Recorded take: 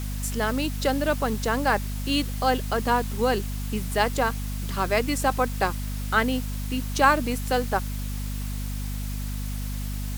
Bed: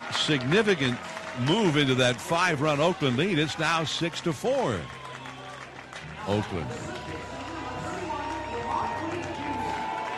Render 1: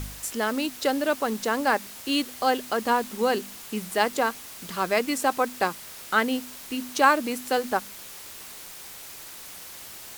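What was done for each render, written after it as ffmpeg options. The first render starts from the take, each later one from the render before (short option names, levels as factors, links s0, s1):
-af "bandreject=f=50:t=h:w=4,bandreject=f=100:t=h:w=4,bandreject=f=150:t=h:w=4,bandreject=f=200:t=h:w=4,bandreject=f=250:t=h:w=4"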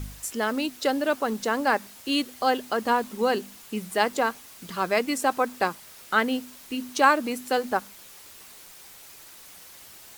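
-af "afftdn=nr=6:nf=-42"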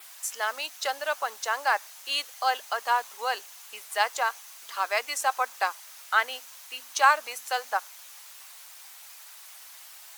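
-af "highpass=f=700:w=0.5412,highpass=f=700:w=1.3066,adynamicequalizer=threshold=0.00178:dfrequency=6200:dqfactor=5.6:tfrequency=6200:tqfactor=5.6:attack=5:release=100:ratio=0.375:range=3:mode=boostabove:tftype=bell"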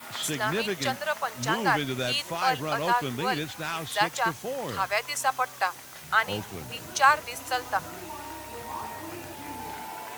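-filter_complex "[1:a]volume=0.422[s0];[0:a][s0]amix=inputs=2:normalize=0"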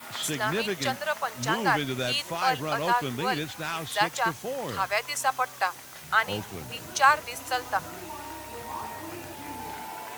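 -af anull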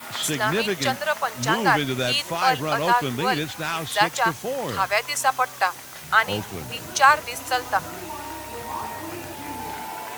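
-af "volume=1.78,alimiter=limit=0.708:level=0:latency=1"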